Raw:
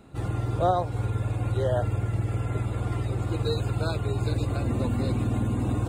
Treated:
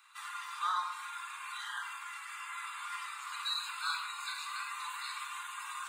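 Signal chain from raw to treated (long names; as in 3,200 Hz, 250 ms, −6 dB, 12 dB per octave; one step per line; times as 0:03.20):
Butterworth high-pass 960 Hz 96 dB per octave
rectangular room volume 2,500 cubic metres, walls furnished, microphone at 3.7 metres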